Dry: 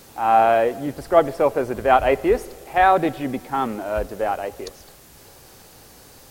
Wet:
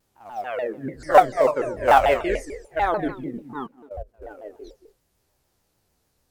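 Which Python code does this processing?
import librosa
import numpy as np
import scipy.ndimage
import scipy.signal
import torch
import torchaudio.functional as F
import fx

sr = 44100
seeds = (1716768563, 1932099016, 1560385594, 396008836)

p1 = fx.spec_steps(x, sr, hold_ms=50)
p2 = fx.doubler(p1, sr, ms=27.0, db=-8.5)
p3 = fx.spec_box(p2, sr, start_s=1.0, length_s=1.66, low_hz=530.0, high_hz=9100.0, gain_db=8)
p4 = fx.quant_companded(p3, sr, bits=4)
p5 = p3 + (p4 * 10.0 ** (-11.0 / 20.0))
p6 = fx.peak_eq(p5, sr, hz=1700.0, db=9.5, octaves=0.64, at=(0.75, 1.19))
p7 = fx.level_steps(p6, sr, step_db=23, at=(3.64, 4.31))
p8 = fx.low_shelf(p7, sr, hz=110.0, db=7.5)
p9 = p8 + fx.echo_single(p8, sr, ms=227, db=-11.0, dry=0)
p10 = fx.noise_reduce_blind(p9, sr, reduce_db=18)
p11 = fx.vibrato_shape(p10, sr, shape='saw_down', rate_hz=6.8, depth_cents=250.0)
y = p11 * 10.0 ** (-8.5 / 20.0)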